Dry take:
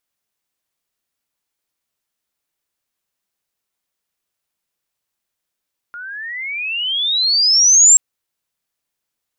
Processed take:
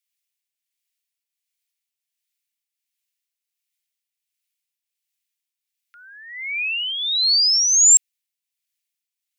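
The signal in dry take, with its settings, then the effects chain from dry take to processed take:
sweep logarithmic 1.4 kHz -> 7.6 kHz -28.5 dBFS -> -4.5 dBFS 2.03 s
Chebyshev high-pass 2.2 kHz, order 3; tremolo triangle 1.4 Hz, depth 55%

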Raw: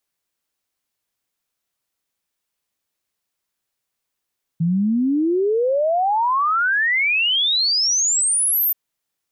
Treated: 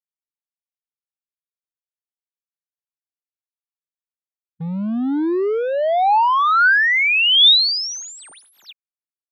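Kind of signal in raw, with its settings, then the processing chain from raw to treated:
log sweep 160 Hz -> 14 kHz 4.13 s -15.5 dBFS
expander on every frequency bin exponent 1.5; in parallel at -5 dB: overload inside the chain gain 25.5 dB; on the sum: cabinet simulation 250–4400 Hz, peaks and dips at 510 Hz -4 dB, 850 Hz +4 dB, 1.5 kHz +5 dB, 3.6 kHz +9 dB

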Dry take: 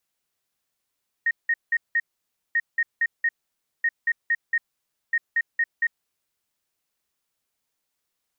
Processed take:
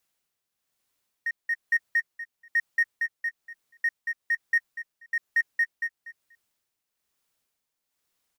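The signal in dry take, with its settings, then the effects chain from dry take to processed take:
beep pattern sine 1.86 kHz, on 0.05 s, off 0.18 s, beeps 4, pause 0.55 s, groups 4, -18 dBFS
in parallel at -9 dB: overload inside the chain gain 30.5 dB; on the sum: tremolo 1.1 Hz, depth 59%; feedback delay 241 ms, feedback 17%, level -13.5 dB

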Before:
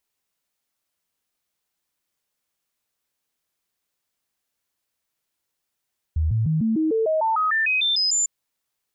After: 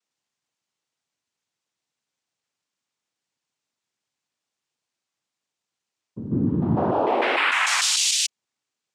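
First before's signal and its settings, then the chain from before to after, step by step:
stepped sine 78.8 Hz up, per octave 2, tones 14, 0.15 s, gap 0.00 s -18 dBFS
noise-vocoded speech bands 4

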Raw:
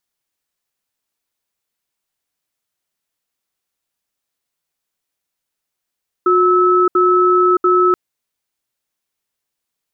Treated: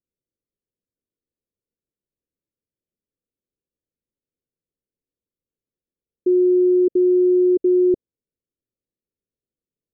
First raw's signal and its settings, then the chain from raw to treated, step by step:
cadence 362 Hz, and 1.3 kHz, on 0.62 s, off 0.07 s, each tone -12 dBFS 1.68 s
steep low-pass 530 Hz 48 dB/octave

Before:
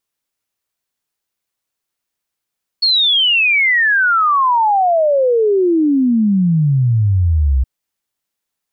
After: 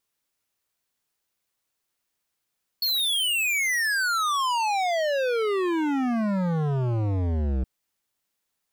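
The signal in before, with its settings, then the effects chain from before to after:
log sweep 4.4 kHz -> 62 Hz 4.82 s -10 dBFS
overload inside the chain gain 24 dB

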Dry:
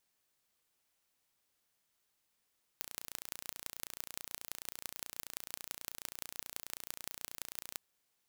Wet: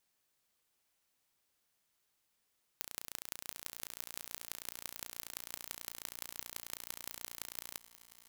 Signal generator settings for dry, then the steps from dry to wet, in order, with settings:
pulse train 29.3 per s, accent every 5, -11 dBFS 4.96 s
shuffle delay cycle 938 ms, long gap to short 3:1, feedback 55%, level -17.5 dB

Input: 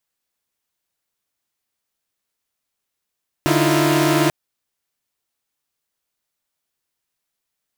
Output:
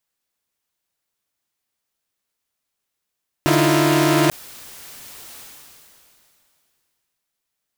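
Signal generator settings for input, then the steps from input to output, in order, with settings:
chord D3/D#4/E4/F4 saw, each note -17.5 dBFS 0.84 s
decay stretcher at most 22 dB/s

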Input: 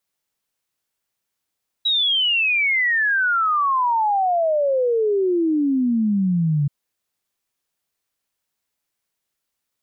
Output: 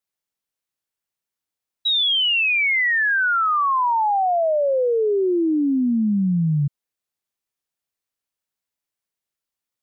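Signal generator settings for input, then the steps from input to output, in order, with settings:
log sweep 3.9 kHz -> 140 Hz 4.83 s -16 dBFS
upward expansion 1.5:1, over -34 dBFS

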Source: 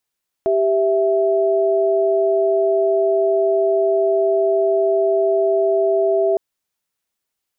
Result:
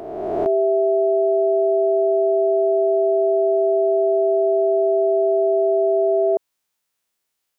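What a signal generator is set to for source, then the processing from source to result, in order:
chord G4/E5 sine, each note -16.5 dBFS 5.91 s
reverse spectral sustain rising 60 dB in 1.76 s; bass shelf 230 Hz -5 dB

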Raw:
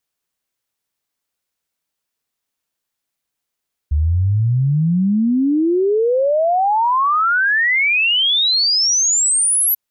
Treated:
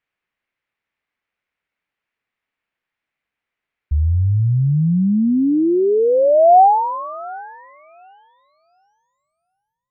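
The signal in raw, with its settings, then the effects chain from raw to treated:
log sweep 71 Hz -> 12 kHz 5.84 s -12.5 dBFS
low-pass sweep 2.2 kHz -> 140 Hz, 5.55–8.27 s; thinning echo 730 ms, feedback 22%, high-pass 510 Hz, level -20 dB

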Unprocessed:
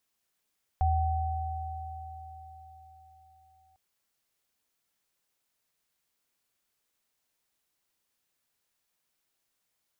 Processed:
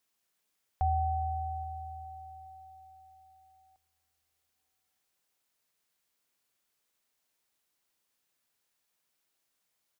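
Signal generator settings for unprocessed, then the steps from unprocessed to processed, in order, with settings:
sine partials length 2.95 s, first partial 80.3 Hz, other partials 761 Hz, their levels -3 dB, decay 3.76 s, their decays 4.83 s, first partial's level -23 dB
bass shelf 130 Hz -5 dB; feedback delay 413 ms, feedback 57%, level -23 dB

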